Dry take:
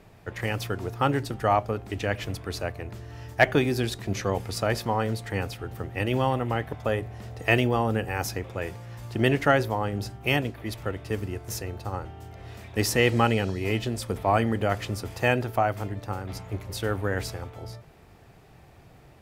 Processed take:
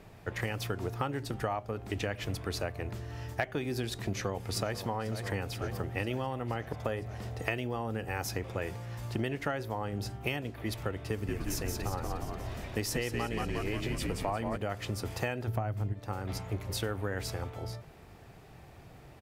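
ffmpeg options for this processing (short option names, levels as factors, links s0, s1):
-filter_complex "[0:a]asplit=2[s0][s1];[s1]afade=t=in:st=4.06:d=0.01,afade=t=out:st=4.79:d=0.01,aecho=0:1:490|980|1470|1960|2450|2940|3430|3920|4410:0.211349|0.147944|0.103561|0.0724927|0.0507449|0.0355214|0.024865|0.0174055|0.0121838[s2];[s0][s2]amix=inputs=2:normalize=0,asplit=3[s3][s4][s5];[s3]afade=t=out:st=11.27:d=0.02[s6];[s4]asplit=9[s7][s8][s9][s10][s11][s12][s13][s14][s15];[s8]adelay=178,afreqshift=-65,volume=0.631[s16];[s9]adelay=356,afreqshift=-130,volume=0.355[s17];[s10]adelay=534,afreqshift=-195,volume=0.197[s18];[s11]adelay=712,afreqshift=-260,volume=0.111[s19];[s12]adelay=890,afreqshift=-325,volume=0.0624[s20];[s13]adelay=1068,afreqshift=-390,volume=0.0347[s21];[s14]adelay=1246,afreqshift=-455,volume=0.0195[s22];[s15]adelay=1424,afreqshift=-520,volume=0.0108[s23];[s7][s16][s17][s18][s19][s20][s21][s22][s23]amix=inputs=9:normalize=0,afade=t=in:st=11.27:d=0.02,afade=t=out:st=14.56:d=0.02[s24];[s5]afade=t=in:st=14.56:d=0.02[s25];[s6][s24][s25]amix=inputs=3:normalize=0,asplit=3[s26][s27][s28];[s26]afade=t=out:st=15.47:d=0.02[s29];[s27]equalizer=f=99:t=o:w=2.9:g=14.5,afade=t=in:st=15.47:d=0.02,afade=t=out:st=15.92:d=0.02[s30];[s28]afade=t=in:st=15.92:d=0.02[s31];[s29][s30][s31]amix=inputs=3:normalize=0,acompressor=threshold=0.0355:ratio=12"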